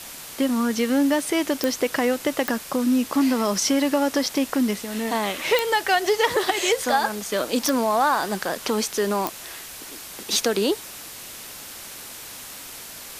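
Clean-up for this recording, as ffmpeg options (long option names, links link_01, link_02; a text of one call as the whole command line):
ffmpeg -i in.wav -af "adeclick=threshold=4,afwtdn=0.014" out.wav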